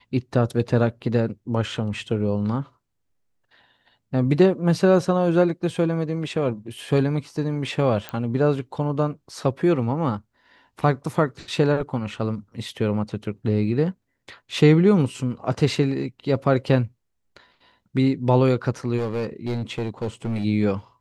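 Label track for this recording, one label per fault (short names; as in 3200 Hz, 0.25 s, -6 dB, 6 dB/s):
8.090000	8.090000	pop -14 dBFS
18.970000	20.450000	clipped -21.5 dBFS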